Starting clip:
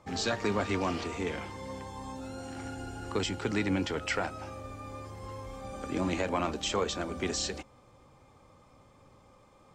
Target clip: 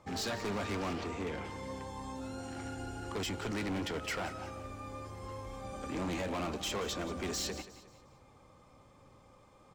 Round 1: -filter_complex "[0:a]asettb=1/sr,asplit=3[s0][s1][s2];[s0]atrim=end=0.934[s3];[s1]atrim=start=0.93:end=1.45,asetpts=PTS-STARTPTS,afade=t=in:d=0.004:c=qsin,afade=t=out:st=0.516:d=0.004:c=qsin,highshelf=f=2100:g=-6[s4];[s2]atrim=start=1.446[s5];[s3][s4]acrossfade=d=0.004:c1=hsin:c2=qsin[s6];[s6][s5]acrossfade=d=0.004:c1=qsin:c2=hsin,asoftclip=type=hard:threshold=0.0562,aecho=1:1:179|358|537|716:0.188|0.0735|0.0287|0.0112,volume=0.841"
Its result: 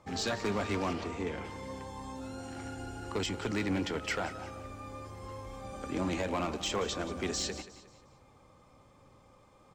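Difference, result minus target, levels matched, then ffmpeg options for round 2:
hard clipper: distortion -8 dB
-filter_complex "[0:a]asettb=1/sr,asplit=3[s0][s1][s2];[s0]atrim=end=0.934[s3];[s1]atrim=start=0.93:end=1.45,asetpts=PTS-STARTPTS,afade=t=in:d=0.004:c=qsin,afade=t=out:st=0.516:d=0.004:c=qsin,highshelf=f=2100:g=-6[s4];[s2]atrim=start=1.446[s5];[s3][s4]acrossfade=d=0.004:c1=hsin:c2=qsin[s6];[s6][s5]acrossfade=d=0.004:c1=qsin:c2=hsin,asoftclip=type=hard:threshold=0.0266,aecho=1:1:179|358|537|716:0.188|0.0735|0.0287|0.0112,volume=0.841"

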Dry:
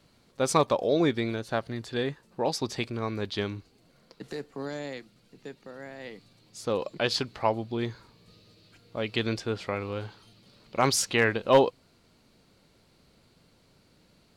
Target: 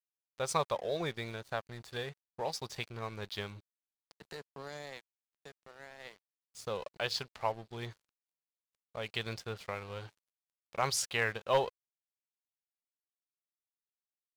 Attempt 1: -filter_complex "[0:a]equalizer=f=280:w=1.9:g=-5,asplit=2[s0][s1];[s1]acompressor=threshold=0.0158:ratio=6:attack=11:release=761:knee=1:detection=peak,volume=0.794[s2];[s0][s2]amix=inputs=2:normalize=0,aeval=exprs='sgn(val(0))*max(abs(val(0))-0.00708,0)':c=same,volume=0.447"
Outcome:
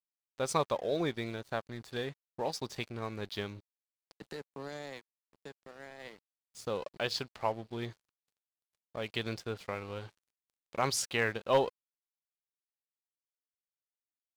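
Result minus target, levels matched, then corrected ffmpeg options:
250 Hz band +5.0 dB
-filter_complex "[0:a]equalizer=f=280:w=1.9:g=-16,asplit=2[s0][s1];[s1]acompressor=threshold=0.0158:ratio=6:attack=11:release=761:knee=1:detection=peak,volume=0.794[s2];[s0][s2]amix=inputs=2:normalize=0,aeval=exprs='sgn(val(0))*max(abs(val(0))-0.00708,0)':c=same,volume=0.447"

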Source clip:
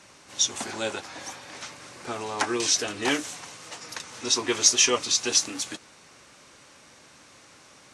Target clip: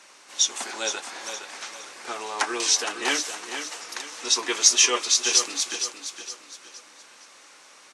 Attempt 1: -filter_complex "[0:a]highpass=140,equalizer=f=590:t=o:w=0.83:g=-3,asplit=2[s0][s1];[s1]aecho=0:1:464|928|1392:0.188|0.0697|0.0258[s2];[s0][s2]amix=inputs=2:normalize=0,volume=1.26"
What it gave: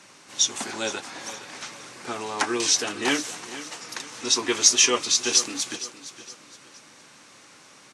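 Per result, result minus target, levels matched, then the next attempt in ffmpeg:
125 Hz band +15.5 dB; echo-to-direct -6 dB
-filter_complex "[0:a]highpass=450,equalizer=f=590:t=o:w=0.83:g=-3,asplit=2[s0][s1];[s1]aecho=0:1:464|928|1392:0.188|0.0697|0.0258[s2];[s0][s2]amix=inputs=2:normalize=0,volume=1.26"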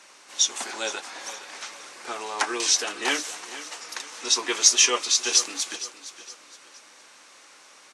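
echo-to-direct -6 dB
-filter_complex "[0:a]highpass=450,equalizer=f=590:t=o:w=0.83:g=-3,asplit=2[s0][s1];[s1]aecho=0:1:464|928|1392|1856:0.376|0.139|0.0515|0.019[s2];[s0][s2]amix=inputs=2:normalize=0,volume=1.26"

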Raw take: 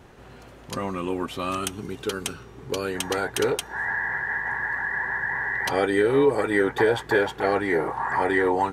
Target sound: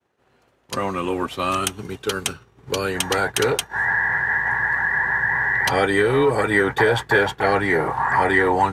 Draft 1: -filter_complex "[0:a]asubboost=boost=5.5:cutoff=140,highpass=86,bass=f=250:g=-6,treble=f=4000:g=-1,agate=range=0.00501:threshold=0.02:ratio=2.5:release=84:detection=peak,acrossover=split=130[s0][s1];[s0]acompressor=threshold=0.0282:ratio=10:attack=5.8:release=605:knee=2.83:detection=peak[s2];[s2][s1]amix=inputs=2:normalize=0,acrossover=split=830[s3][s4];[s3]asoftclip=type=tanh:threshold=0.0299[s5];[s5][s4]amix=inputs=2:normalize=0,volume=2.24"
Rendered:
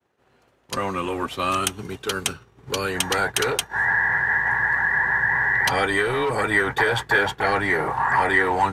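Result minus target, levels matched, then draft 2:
saturation: distortion +11 dB
-filter_complex "[0:a]asubboost=boost=5.5:cutoff=140,highpass=86,bass=f=250:g=-6,treble=f=4000:g=-1,agate=range=0.00501:threshold=0.02:ratio=2.5:release=84:detection=peak,acrossover=split=130[s0][s1];[s0]acompressor=threshold=0.0282:ratio=10:attack=5.8:release=605:knee=2.83:detection=peak[s2];[s2][s1]amix=inputs=2:normalize=0,acrossover=split=830[s3][s4];[s3]asoftclip=type=tanh:threshold=0.112[s5];[s5][s4]amix=inputs=2:normalize=0,volume=2.24"

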